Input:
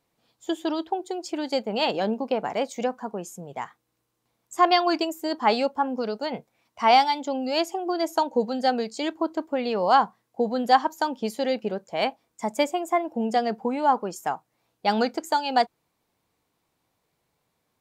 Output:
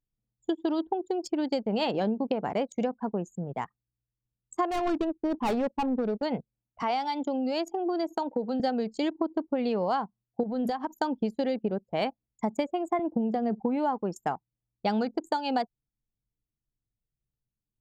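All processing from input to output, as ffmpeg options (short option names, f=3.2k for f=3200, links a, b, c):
-filter_complex "[0:a]asettb=1/sr,asplit=3[a][b][c];[a]atrim=end=4.714[d];[b]atrim=start=4.71:end=6.23,asetpts=PTS-STARTPTS,afade=t=in:d=0.004:c=qsin,afade=t=out:st=1.516:d=0.004:c=qsin,agate=range=-33dB:threshold=-40dB:ratio=3:release=100:detection=peak,adynamicsmooth=sensitivity=2:basefreq=610,asoftclip=type=hard:threshold=-22dB[e];[c]atrim=start=6.226[f];[d][e]acrossfade=d=0.004:c1=hsin:c2=qsin[g];[g][f]acrossfade=d=0.004:c1=qsin:c2=hsin,asettb=1/sr,asplit=3[h][i][j];[h]atrim=end=6.824[k];[i]atrim=start=6.82:end=8.6,asetpts=PTS-STARTPTS,afade=t=in:d=0.004:c=qsin,afade=t=out:st=1.776:d=0.004:c=qsin,acompressor=threshold=-28dB:ratio=2:attack=3.2:release=140:knee=1:detection=peak,highpass=f=230:w=0.5412,highpass=f=230:w=1.3066[l];[j]atrim=start=8.596[m];[k][l]acrossfade=d=0.004:c1=hsin:c2=qsin[n];[n][m]acrossfade=d=0.004:c1=qsin:c2=hsin,asettb=1/sr,asplit=3[o][p][q];[o]atrim=end=10.434[r];[p]atrim=start=10.43:end=10.99,asetpts=PTS-STARTPTS,afade=t=in:d=0.004:c=qsin,afade=t=out:st=0.556:d=0.004:c=qsin,highshelf=f=11k:g=11.5,bandreject=f=60:t=h:w=6,bandreject=f=120:t=h:w=6,bandreject=f=180:t=h:w=6,bandreject=f=240:t=h:w=6,acompressor=threshold=-26dB:ratio=10:attack=3.2:release=140:knee=1:detection=peak[s];[q]atrim=start=10.986[t];[r][s]acrossfade=d=0.004:c1=hsin:c2=qsin[u];[u][t]acrossfade=d=0.004:c1=qsin:c2=hsin,asettb=1/sr,asplit=3[v][w][x];[v]atrim=end=12.994[y];[w]atrim=start=12.99:end=13.61,asetpts=PTS-STARTPTS,afade=t=in:d=0.004:c=qsin,afade=t=out:st=0.616:d=0.004:c=qsin,equalizer=f=93:t=o:w=2.4:g=11,acrossover=split=290|1800[z][aa][ab];[z]acompressor=threshold=-31dB:ratio=4[ac];[aa]acompressor=threshold=-22dB:ratio=4[ad];[ab]acompressor=threshold=-48dB:ratio=4[ae];[ac][ad][ae]amix=inputs=3:normalize=0[af];[x]atrim=start=13.606[ag];[y][af]acrossfade=d=0.004:c1=hsin:c2=qsin[ah];[ah][ag]acrossfade=d=0.004:c1=qsin:c2=hsin,lowshelf=f=370:g=11,acompressor=threshold=-21dB:ratio=20,anlmdn=2.51,volume=-2.5dB"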